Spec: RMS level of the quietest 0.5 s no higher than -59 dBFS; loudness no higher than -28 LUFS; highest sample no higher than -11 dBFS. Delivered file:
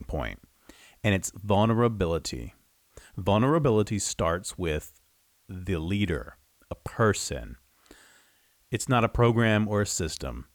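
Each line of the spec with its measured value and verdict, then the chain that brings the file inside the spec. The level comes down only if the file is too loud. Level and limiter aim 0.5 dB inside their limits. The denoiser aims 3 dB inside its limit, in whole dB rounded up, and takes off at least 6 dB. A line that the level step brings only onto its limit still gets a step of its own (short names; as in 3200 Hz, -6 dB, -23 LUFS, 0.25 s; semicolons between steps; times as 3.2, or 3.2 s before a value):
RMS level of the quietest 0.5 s -66 dBFS: OK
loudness -26.5 LUFS: fail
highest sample -12.0 dBFS: OK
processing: gain -2 dB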